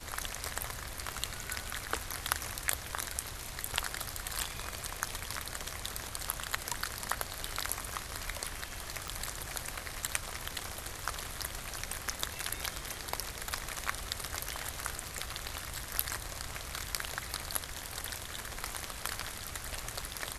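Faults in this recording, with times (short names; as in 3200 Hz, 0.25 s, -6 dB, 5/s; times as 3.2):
9.08 pop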